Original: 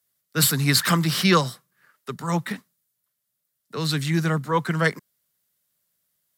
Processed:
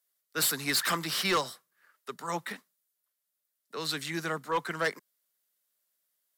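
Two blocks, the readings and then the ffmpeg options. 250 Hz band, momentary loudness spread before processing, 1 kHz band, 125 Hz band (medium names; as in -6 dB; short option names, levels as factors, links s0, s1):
-14.0 dB, 16 LU, -6.5 dB, -19.5 dB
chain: -af "highpass=360,asoftclip=type=hard:threshold=0.141,volume=0.562"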